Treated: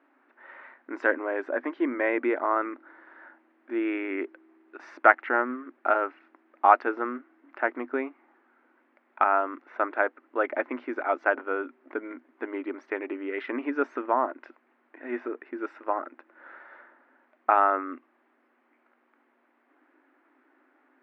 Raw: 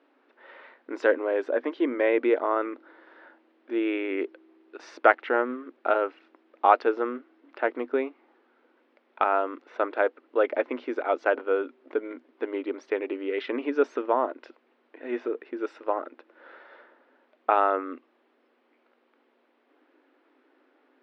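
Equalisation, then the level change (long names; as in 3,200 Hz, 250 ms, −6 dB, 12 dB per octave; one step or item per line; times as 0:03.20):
parametric band 470 Hz −10 dB 0.52 octaves
high shelf with overshoot 2,600 Hz −9.5 dB, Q 1.5
+1.0 dB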